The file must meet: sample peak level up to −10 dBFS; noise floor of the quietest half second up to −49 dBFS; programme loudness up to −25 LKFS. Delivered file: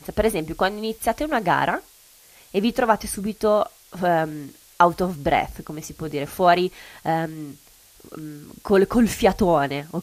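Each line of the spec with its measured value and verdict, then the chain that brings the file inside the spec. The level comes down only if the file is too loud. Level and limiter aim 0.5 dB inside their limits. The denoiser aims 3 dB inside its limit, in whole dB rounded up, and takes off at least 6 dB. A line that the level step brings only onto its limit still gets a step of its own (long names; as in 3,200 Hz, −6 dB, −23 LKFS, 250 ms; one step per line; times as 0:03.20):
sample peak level −2.5 dBFS: out of spec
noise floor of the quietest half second −51 dBFS: in spec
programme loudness −22.0 LKFS: out of spec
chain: level −3.5 dB
brickwall limiter −10.5 dBFS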